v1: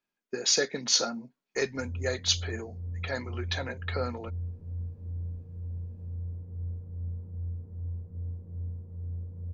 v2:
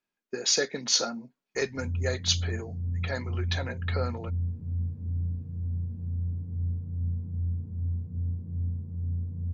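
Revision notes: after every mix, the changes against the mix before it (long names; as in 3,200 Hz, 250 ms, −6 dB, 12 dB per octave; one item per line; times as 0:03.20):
background: add octave-band graphic EQ 125/250/500 Hz +10/+9/−6 dB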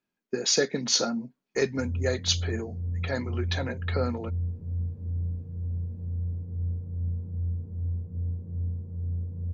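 background: add octave-band graphic EQ 125/250/500 Hz −10/−9/+6 dB
master: add parametric band 170 Hz +8 dB 2.7 octaves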